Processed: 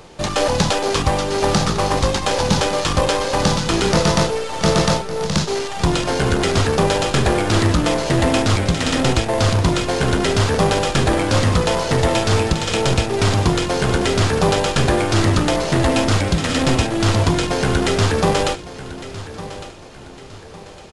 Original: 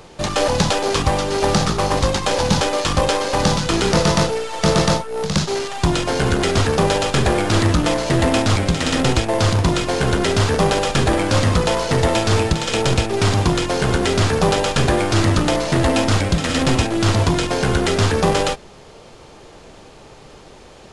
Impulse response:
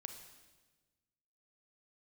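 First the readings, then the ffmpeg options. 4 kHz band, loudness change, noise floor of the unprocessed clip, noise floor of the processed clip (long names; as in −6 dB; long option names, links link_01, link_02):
0.0 dB, 0.0 dB, −43 dBFS, −38 dBFS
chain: -af "aecho=1:1:1157|2314|3471:0.178|0.0676|0.0257"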